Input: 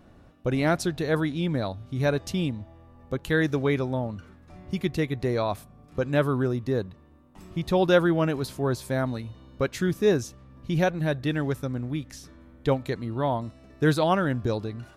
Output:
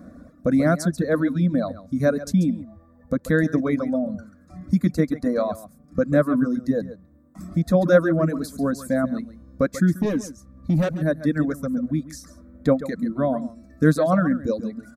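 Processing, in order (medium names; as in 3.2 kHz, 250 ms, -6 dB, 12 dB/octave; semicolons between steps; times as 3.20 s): high-pass 89 Hz 12 dB/octave; peaking EQ 7.8 kHz +2.5 dB; static phaser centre 580 Hz, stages 8; in parallel at 0 dB: compression, threshold -39 dBFS, peak gain reduction 21.5 dB; 10.00–10.96 s: on the sum: hard clipper -25 dBFS, distortion -18 dB; bass shelf 460 Hz +12 dB; delay 137 ms -7.5 dB; reverb removal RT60 1.6 s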